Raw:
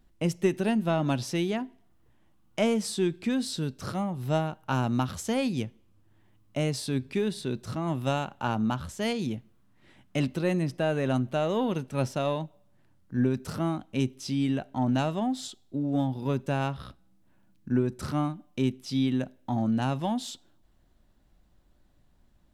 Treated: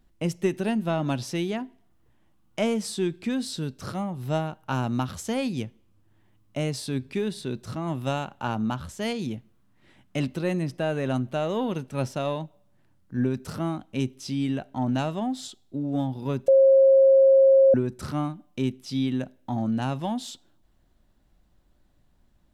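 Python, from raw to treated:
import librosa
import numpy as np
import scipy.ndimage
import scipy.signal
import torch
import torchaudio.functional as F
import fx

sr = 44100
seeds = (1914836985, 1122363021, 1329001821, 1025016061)

y = fx.edit(x, sr, fx.bleep(start_s=16.48, length_s=1.26, hz=538.0, db=-12.5), tone=tone)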